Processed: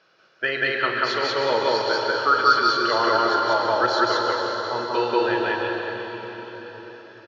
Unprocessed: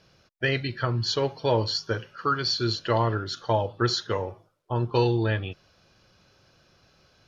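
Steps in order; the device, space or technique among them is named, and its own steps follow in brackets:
station announcement (band-pass filter 370–4,400 Hz; parametric band 1,400 Hz +8 dB 0.53 octaves; loudspeakers that aren't time-aligned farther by 16 metres −11 dB, 64 metres 0 dB; convolution reverb RT60 4.8 s, pre-delay 109 ms, DRR 1 dB)

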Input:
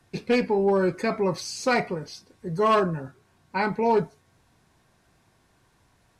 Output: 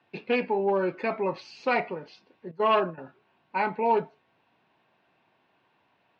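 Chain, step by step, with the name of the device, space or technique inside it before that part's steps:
0:02.51–0:02.98: noise gate −26 dBFS, range −14 dB
kitchen radio (loudspeaker in its box 220–3,700 Hz, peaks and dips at 620 Hz +3 dB, 880 Hz +5 dB, 2,700 Hz +8 dB)
level −4 dB

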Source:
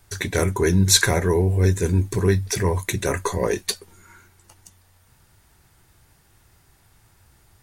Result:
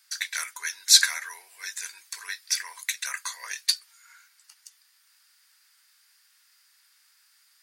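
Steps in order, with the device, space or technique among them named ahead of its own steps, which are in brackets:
headphones lying on a table (high-pass filter 1,400 Hz 24 dB per octave; parametric band 4,800 Hz +9 dB 0.36 octaves)
level −2 dB

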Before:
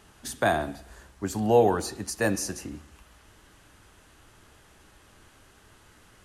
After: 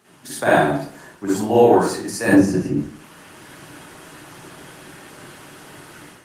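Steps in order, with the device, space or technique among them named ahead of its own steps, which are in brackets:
0:02.28–0:02.73: spectral tilt −3.5 dB per octave
far-field microphone of a smart speaker (convolution reverb RT60 0.45 s, pre-delay 43 ms, DRR −8 dB; high-pass filter 120 Hz 24 dB per octave; automatic gain control gain up to 10.5 dB; level −1 dB; Opus 24 kbit/s 48,000 Hz)

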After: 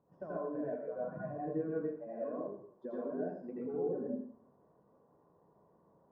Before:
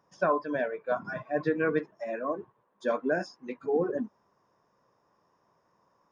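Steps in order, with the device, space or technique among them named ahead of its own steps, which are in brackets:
television next door (downward compressor 4 to 1, threshold −41 dBFS, peak gain reduction 17 dB; low-pass filter 560 Hz 12 dB per octave; convolution reverb RT60 0.60 s, pre-delay 79 ms, DRR −7.5 dB)
level −1 dB

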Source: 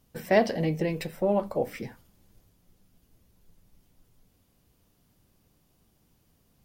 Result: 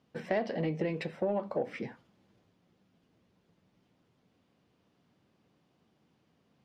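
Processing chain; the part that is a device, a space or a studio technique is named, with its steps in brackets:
AM radio (band-pass filter 160–3,400 Hz; downward compressor 5 to 1, threshold −27 dBFS, peak gain reduction 10.5 dB; soft clipping −18.5 dBFS, distortion −25 dB)

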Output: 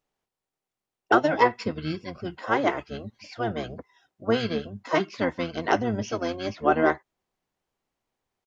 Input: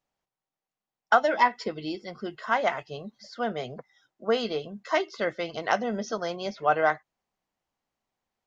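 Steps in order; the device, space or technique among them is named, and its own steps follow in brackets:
0:03.56–0:04.77: high-pass filter 97 Hz 12 dB per octave
octave pedal (pitch-shifted copies added −12 semitones −2 dB)

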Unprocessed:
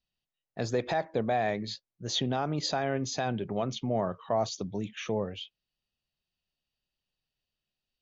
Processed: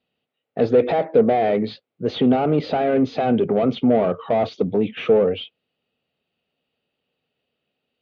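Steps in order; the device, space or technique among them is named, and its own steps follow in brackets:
overdrive pedal into a guitar cabinet (mid-hump overdrive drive 21 dB, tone 1,200 Hz, clips at −17 dBFS; loudspeaker in its box 77–3,600 Hz, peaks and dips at 92 Hz +5 dB, 160 Hz +4 dB, 250 Hz +8 dB, 460 Hz +9 dB, 1,000 Hz −8 dB, 1,700 Hz −7 dB)
level +5.5 dB

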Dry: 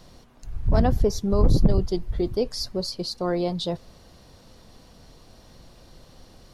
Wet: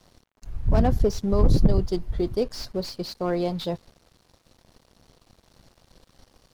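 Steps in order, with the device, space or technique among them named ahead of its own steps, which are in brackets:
early transistor amplifier (dead-zone distortion −49 dBFS; slew-rate limiting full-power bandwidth 89 Hz)

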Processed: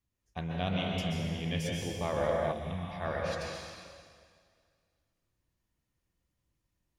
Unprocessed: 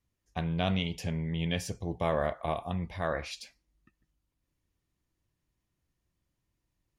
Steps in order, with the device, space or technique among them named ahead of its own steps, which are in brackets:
stairwell (convolution reverb RT60 2.0 s, pre-delay 119 ms, DRR −2.5 dB)
0:02.51–0:03.00: parametric band 1,600 Hz → 310 Hz −10 dB 1.7 octaves
level −4.5 dB

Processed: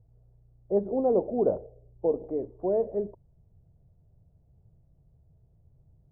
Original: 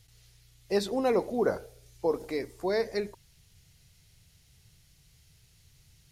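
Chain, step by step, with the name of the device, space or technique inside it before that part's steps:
0:01.57–0:02.28: parametric band 1,700 Hz −13.5 dB 0.6 octaves
under water (low-pass filter 720 Hz 24 dB per octave; parametric band 620 Hz +4.5 dB 0.38 octaves)
level +1.5 dB

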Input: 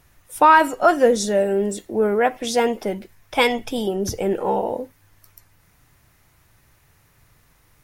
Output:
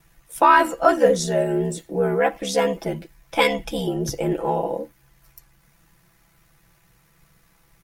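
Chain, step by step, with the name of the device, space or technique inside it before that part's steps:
ring-modulated robot voice (ring modulation 35 Hz; comb filter 6 ms, depth 73%)

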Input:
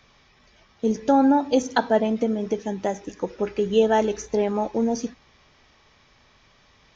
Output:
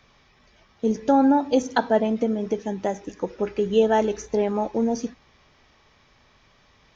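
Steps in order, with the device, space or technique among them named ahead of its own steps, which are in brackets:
behind a face mask (high-shelf EQ 3,300 Hz −8 dB)
high-shelf EQ 4,100 Hz +5.5 dB

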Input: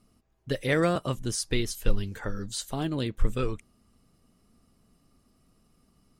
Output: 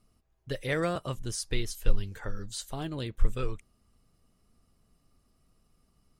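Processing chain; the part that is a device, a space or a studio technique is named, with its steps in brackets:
low shelf boost with a cut just above (low-shelf EQ 66 Hz +5.5 dB; parametric band 240 Hz −5 dB 1 octave)
level −4 dB

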